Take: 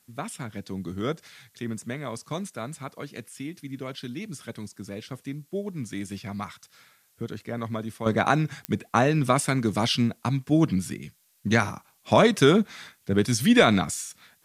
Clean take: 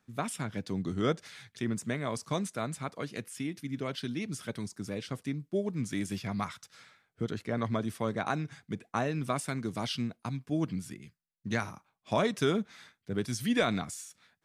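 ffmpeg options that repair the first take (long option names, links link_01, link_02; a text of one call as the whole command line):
ffmpeg -i in.wav -af "adeclick=threshold=4,agate=range=-21dB:threshold=-54dB,asetnsamples=nb_out_samples=441:pad=0,asendcmd='8.06 volume volume -10dB',volume=0dB" out.wav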